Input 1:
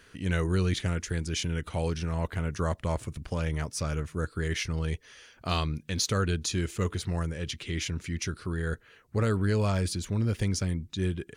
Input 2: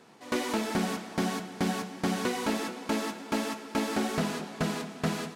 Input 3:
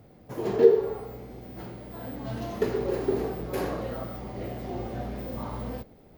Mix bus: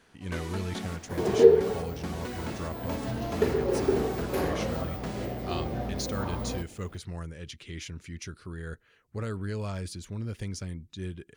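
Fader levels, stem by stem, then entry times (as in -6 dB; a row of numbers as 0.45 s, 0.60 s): -7.5 dB, -9.0 dB, +1.0 dB; 0.00 s, 0.00 s, 0.80 s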